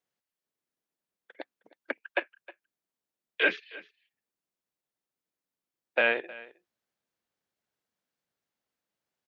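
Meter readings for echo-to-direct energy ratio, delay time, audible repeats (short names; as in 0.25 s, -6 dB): -20.0 dB, 0.313 s, 1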